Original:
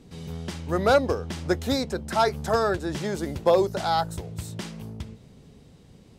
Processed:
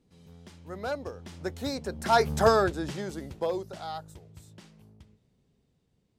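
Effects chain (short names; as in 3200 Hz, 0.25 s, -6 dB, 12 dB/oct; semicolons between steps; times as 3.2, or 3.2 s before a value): Doppler pass-by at 2.39, 11 m/s, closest 2.5 m; gain +3 dB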